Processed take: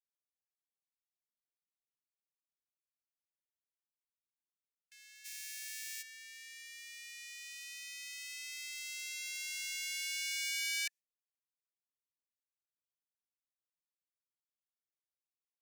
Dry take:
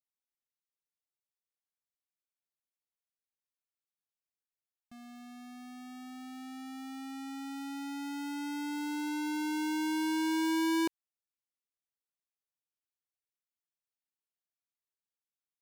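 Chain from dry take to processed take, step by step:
0:05.24–0:06.01: compressing power law on the bin magnitudes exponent 0.3
Chebyshev high-pass with heavy ripple 1,700 Hz, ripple 6 dB
noise gate with hold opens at −56 dBFS
level +7.5 dB

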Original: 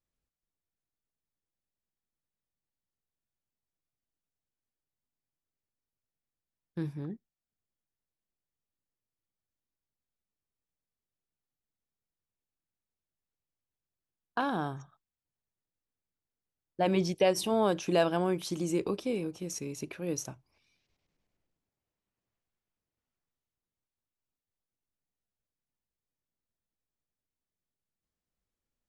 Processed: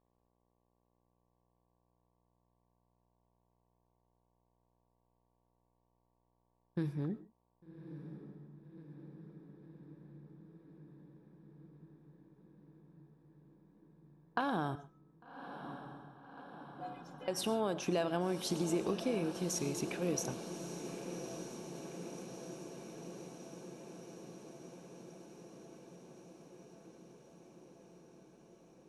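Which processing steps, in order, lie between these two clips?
downward compressor 6 to 1, threshold −32 dBFS, peak gain reduction 11 dB
0:14.75–0:17.28: stiff-string resonator 150 Hz, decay 0.62 s, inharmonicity 0.03
hum with harmonics 60 Hz, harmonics 19, −80 dBFS −2 dB per octave
feedback delay with all-pass diffusion 1,152 ms, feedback 75%, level −10 dB
convolution reverb, pre-delay 55 ms, DRR 15 dB
one half of a high-frequency compander decoder only
level +1.5 dB

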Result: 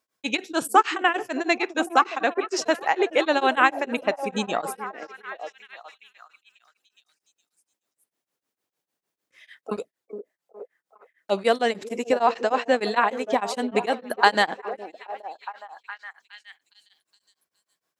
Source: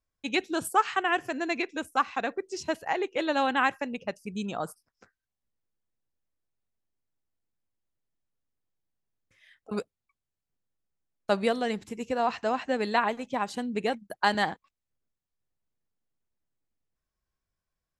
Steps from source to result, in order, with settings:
high-pass filter 290 Hz 12 dB per octave
in parallel at +1 dB: downward compressor, threshold −33 dBFS, peak gain reduction 15 dB
0:09.76–0:11.39: on the sum: flanger swept by the level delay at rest 6.2 ms, full sweep at −27 dBFS
echo through a band-pass that steps 414 ms, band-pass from 370 Hz, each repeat 0.7 octaves, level −7 dB
tremolo along a rectified sine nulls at 6.6 Hz
level +6 dB

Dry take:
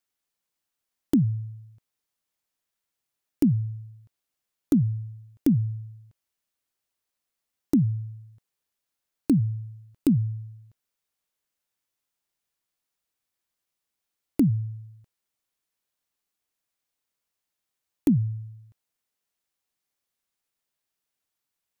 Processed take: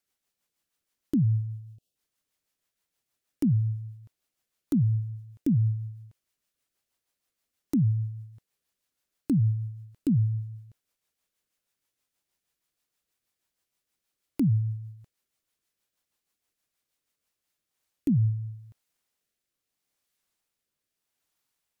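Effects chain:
rotating-speaker cabinet horn 6.3 Hz, later 0.8 Hz, at 0:17.07
brickwall limiter −23.5 dBFS, peak gain reduction 11 dB
time-frequency box erased 0:01.25–0:01.96, 790–2,500 Hz
level +5 dB

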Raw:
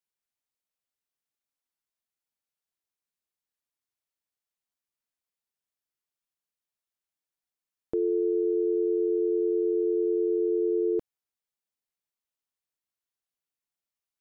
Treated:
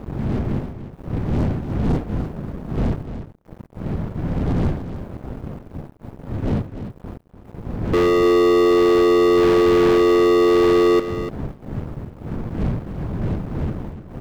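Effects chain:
wind on the microphone 160 Hz −42 dBFS
low-shelf EQ 100 Hz −6 dB
leveller curve on the samples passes 5
single-tap delay 295 ms −10.5 dB
level +4 dB

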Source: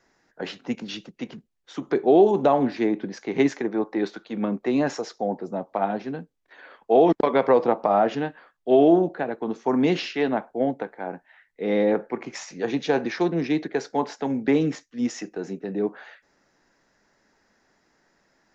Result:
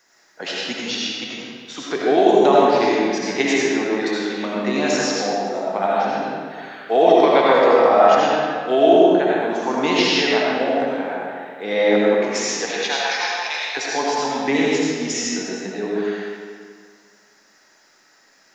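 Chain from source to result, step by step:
0:12.65–0:13.77: Butterworth high-pass 660 Hz 36 dB per octave
spectral tilt +3.5 dB per octave
comb and all-pass reverb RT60 2 s, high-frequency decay 0.75×, pre-delay 40 ms, DRR −5.5 dB
level +2 dB

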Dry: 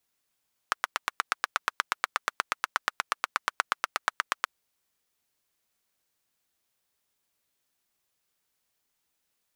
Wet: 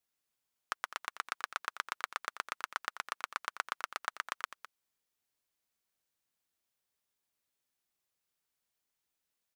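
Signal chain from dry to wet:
single-tap delay 206 ms −13 dB
level −8 dB

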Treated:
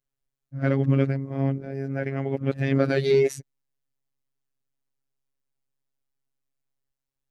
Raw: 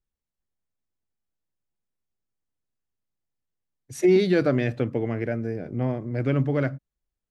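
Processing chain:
played backwards from end to start
phases set to zero 136 Hz
level +2.5 dB

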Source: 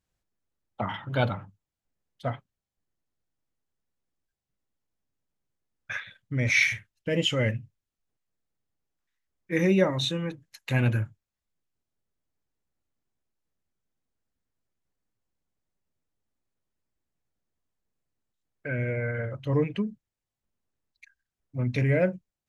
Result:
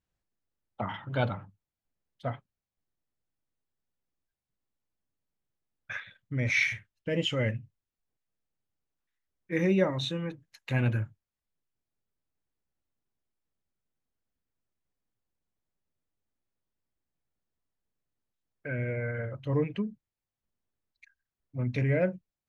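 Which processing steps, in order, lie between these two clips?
high-shelf EQ 6,200 Hz −9.5 dB
level −3 dB

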